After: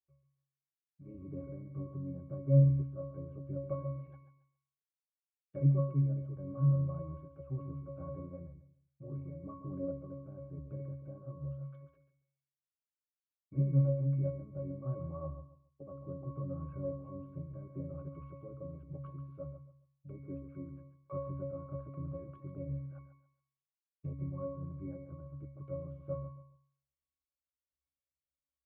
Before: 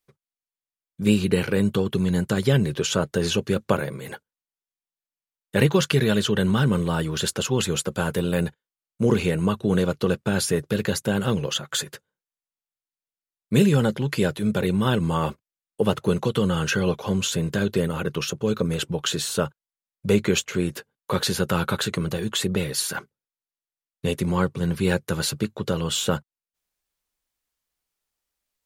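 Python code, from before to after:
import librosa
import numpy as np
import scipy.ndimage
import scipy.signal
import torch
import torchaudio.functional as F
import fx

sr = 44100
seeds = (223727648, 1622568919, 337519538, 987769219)

p1 = fx.env_lowpass_down(x, sr, base_hz=890.0, full_db=-21.5)
p2 = fx.peak_eq(p1, sr, hz=210.0, db=-8.0, octaves=1.1)
p3 = fx.tremolo_random(p2, sr, seeds[0], hz=3.5, depth_pct=55)
p4 = fx.spacing_loss(p3, sr, db_at_10k=36)
p5 = fx.octave_resonator(p4, sr, note='C#', decay_s=0.58)
p6 = p5 + fx.echo_feedback(p5, sr, ms=138, feedback_pct=24, wet_db=-11.0, dry=0)
y = p6 * 10.0 ** (7.5 / 20.0)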